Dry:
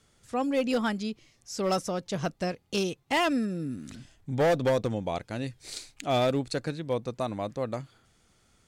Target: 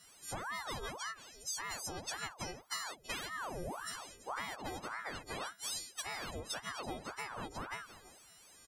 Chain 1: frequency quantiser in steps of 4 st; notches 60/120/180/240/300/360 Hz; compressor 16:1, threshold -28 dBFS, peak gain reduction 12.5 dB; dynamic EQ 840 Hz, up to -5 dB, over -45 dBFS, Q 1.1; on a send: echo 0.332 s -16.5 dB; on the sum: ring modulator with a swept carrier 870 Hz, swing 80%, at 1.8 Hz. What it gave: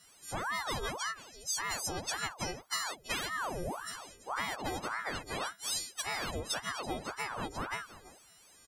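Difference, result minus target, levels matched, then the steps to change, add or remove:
compressor: peak gain reduction -6 dB
change: compressor 16:1, threshold -34.5 dBFS, peak gain reduction 18.5 dB

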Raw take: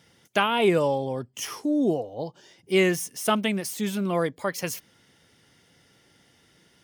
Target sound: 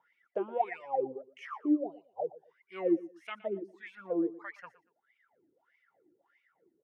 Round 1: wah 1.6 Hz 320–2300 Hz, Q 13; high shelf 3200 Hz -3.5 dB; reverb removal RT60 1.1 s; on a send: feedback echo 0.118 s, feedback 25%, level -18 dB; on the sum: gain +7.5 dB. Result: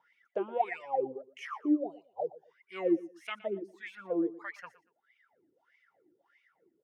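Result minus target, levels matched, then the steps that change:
4000 Hz band +5.0 dB
change: high shelf 3200 Hz -14 dB

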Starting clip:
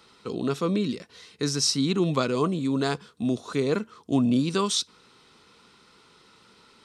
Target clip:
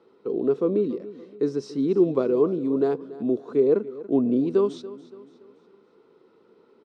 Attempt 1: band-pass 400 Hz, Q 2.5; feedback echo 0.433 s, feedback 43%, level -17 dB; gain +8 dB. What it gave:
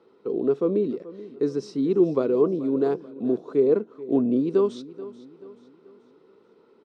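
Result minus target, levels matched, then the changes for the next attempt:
echo 0.149 s late
change: feedback echo 0.284 s, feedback 43%, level -17 dB

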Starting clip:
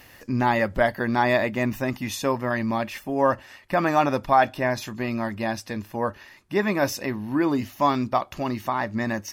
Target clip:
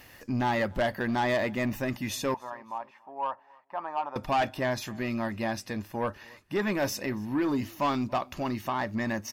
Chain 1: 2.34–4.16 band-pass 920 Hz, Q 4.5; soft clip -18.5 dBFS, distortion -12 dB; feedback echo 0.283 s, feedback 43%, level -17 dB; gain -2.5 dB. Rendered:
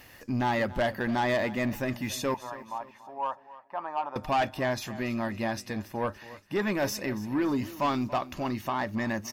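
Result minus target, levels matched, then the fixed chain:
echo-to-direct +9 dB
2.34–4.16 band-pass 920 Hz, Q 4.5; soft clip -18.5 dBFS, distortion -12 dB; feedback echo 0.283 s, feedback 43%, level -26 dB; gain -2.5 dB

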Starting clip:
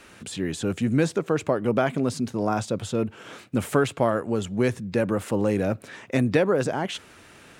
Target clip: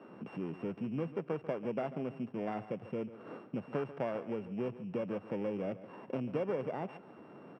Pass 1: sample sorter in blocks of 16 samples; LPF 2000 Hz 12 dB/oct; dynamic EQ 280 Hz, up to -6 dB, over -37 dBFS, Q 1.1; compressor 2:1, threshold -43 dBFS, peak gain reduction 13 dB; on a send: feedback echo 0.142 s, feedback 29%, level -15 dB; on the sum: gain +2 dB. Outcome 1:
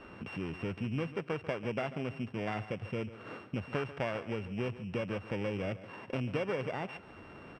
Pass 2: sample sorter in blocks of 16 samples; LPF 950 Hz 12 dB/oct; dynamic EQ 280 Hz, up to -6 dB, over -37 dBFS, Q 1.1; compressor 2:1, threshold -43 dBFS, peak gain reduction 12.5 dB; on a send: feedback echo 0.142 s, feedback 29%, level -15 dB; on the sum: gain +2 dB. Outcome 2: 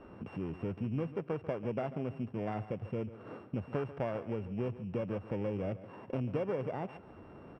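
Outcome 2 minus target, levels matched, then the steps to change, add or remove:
125 Hz band +5.0 dB
add after compressor: HPF 150 Hz 24 dB/oct

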